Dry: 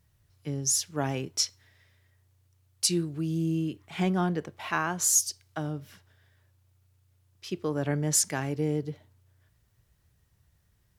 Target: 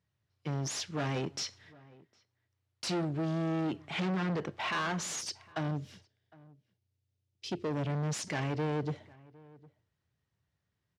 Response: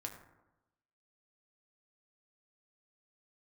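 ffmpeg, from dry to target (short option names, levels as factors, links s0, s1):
-filter_complex "[0:a]agate=range=0.178:threshold=0.00141:ratio=16:detection=peak,asettb=1/sr,asplit=3[s0][s1][s2];[s0]atrim=end=5.714[s3];[s1]atrim=start=5.71:end=8.27,asetpts=PTS-STARTPTS,afade=t=in:d=0.004:c=qsin,afade=t=out:st=2.556:d=0.004:c=qsin,equalizer=f=1300:w=0.83:g=-14.5[s4];[s2]atrim=start=8.266[s5];[s3][s4]acrossfade=d=0.004:c1=hsin:c2=qsin[s6];[s6][s5]acrossfade=d=0.004:c1=qsin:c2=hsin,volume=56.2,asoftclip=hard,volume=0.0178,highpass=120,lowpass=4800,asplit=2[s7][s8];[s8]adelay=758,volume=0.0708,highshelf=f=4000:g=-17.1[s9];[s7][s9]amix=inputs=2:normalize=0,volume=1.88"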